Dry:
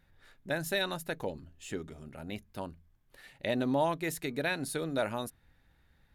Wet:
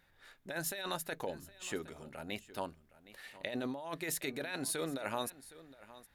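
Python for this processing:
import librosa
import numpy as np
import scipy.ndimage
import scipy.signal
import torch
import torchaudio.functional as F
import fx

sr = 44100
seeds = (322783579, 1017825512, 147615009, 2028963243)

p1 = fx.low_shelf(x, sr, hz=280.0, db=-12.0)
p2 = fx.over_compress(p1, sr, threshold_db=-38.0, ratio=-1.0)
y = p2 + fx.echo_single(p2, sr, ms=765, db=-18.0, dry=0)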